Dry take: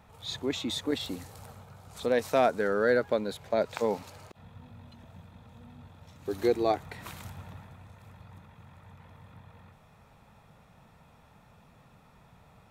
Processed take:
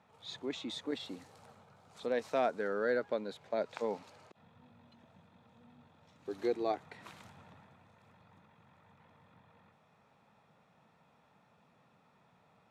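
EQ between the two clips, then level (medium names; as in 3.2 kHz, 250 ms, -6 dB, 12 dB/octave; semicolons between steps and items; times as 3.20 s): high-pass 180 Hz 12 dB/octave; distance through air 60 m; -7.0 dB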